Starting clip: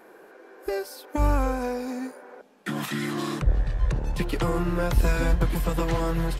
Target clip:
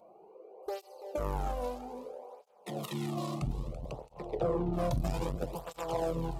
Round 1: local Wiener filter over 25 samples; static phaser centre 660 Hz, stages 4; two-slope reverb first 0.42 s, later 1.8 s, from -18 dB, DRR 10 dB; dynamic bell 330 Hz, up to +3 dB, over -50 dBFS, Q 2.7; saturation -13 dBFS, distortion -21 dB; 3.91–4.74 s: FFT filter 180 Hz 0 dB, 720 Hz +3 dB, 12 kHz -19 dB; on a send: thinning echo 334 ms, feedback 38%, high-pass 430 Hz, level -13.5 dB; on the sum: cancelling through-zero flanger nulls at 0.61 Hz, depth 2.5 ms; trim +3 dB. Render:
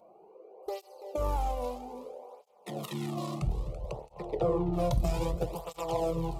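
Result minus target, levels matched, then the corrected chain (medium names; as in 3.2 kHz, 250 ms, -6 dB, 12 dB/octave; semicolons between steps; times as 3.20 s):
saturation: distortion -11 dB
local Wiener filter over 25 samples; static phaser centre 660 Hz, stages 4; two-slope reverb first 0.42 s, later 1.8 s, from -18 dB, DRR 10 dB; dynamic bell 330 Hz, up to +3 dB, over -50 dBFS, Q 2.7; saturation -23 dBFS, distortion -10 dB; 3.91–4.74 s: FFT filter 180 Hz 0 dB, 720 Hz +3 dB, 12 kHz -19 dB; on a send: thinning echo 334 ms, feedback 38%, high-pass 430 Hz, level -13.5 dB; on the sum: cancelling through-zero flanger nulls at 0.61 Hz, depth 2.5 ms; trim +3 dB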